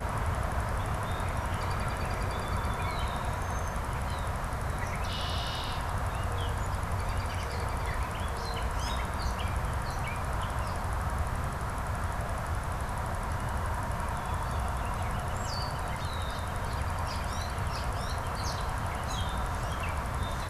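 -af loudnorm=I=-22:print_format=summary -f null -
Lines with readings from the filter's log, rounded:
Input Integrated:    -33.4 LUFS
Input True Peak:     -18.0 dBTP
Input LRA:             0.8 LU
Input Threshold:     -43.4 LUFS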